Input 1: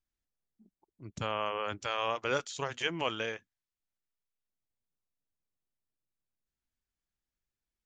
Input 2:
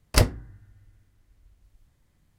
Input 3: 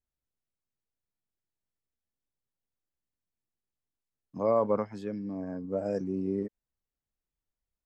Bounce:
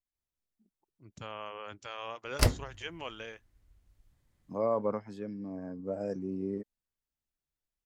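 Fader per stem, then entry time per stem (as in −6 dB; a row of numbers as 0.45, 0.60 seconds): −8.5, −6.0, −4.0 decibels; 0.00, 2.25, 0.15 seconds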